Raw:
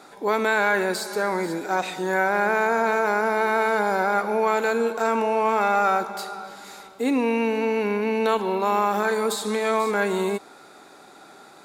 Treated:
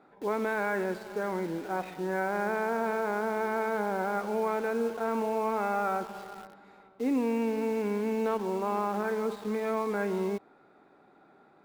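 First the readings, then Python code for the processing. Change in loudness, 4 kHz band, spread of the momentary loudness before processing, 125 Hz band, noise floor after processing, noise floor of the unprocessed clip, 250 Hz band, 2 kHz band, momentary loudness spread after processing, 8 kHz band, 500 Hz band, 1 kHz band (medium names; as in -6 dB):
-8.0 dB, -15.0 dB, 6 LU, no reading, -60 dBFS, -48 dBFS, -4.5 dB, -11.5 dB, 5 LU, -14.0 dB, -7.0 dB, -9.5 dB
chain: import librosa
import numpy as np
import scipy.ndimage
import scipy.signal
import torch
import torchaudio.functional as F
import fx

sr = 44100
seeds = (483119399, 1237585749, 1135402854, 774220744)

p1 = fx.curve_eq(x, sr, hz=(180.0, 2300.0, 6700.0), db=(0, -9, -28))
p2 = fx.quant_dither(p1, sr, seeds[0], bits=6, dither='none')
p3 = p1 + (p2 * librosa.db_to_amplitude(-6.5))
y = p3 * librosa.db_to_amplitude(-7.0)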